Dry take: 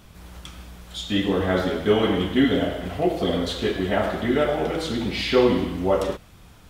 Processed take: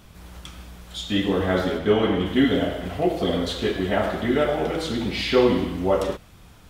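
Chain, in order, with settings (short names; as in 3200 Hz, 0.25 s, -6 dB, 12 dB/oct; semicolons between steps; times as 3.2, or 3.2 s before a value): 1.77–2.25 high shelf 6300 Hz -> 3900 Hz -8 dB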